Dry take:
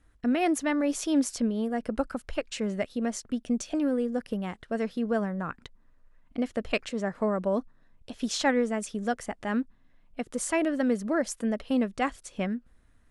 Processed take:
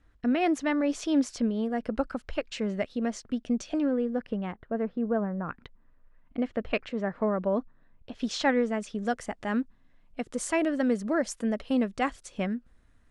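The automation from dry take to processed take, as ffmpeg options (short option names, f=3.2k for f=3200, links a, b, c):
-af "asetnsamples=n=441:p=0,asendcmd='3.86 lowpass f 2900;4.52 lowpass f 1300;5.49 lowpass f 2900;8.15 lowpass f 5100;9.05 lowpass f 8800',lowpass=5.4k"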